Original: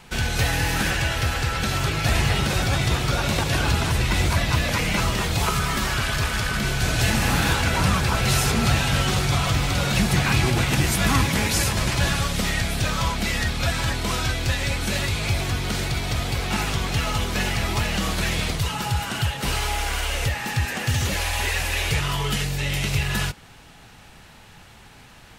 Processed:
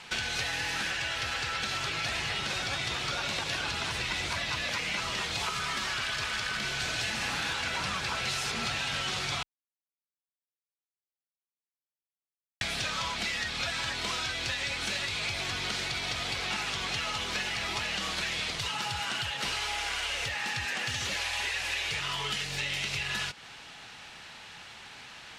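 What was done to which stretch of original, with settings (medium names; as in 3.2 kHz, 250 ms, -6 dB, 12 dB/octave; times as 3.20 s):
9.43–12.61 s: mute
whole clip: low-pass 4.4 kHz 12 dB/octave; tilt EQ +3.5 dB/octave; compression, threshold -30 dBFS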